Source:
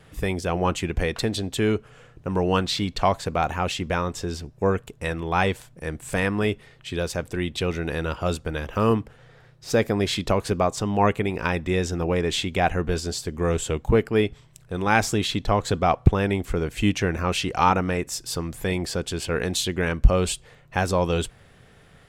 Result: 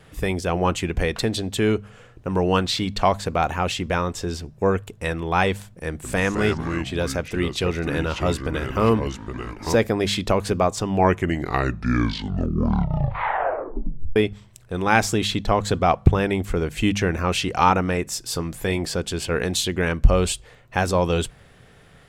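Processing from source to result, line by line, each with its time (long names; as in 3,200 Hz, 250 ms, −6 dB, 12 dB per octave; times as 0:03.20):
0:05.89–0:09.75: delay with pitch and tempo change per echo 149 ms, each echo −4 semitones, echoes 2, each echo −6 dB
0:10.77: tape stop 3.39 s
0:18.23–0:18.94: double-tracking delay 19 ms −13 dB
whole clip: hum removal 50.62 Hz, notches 4; level +2 dB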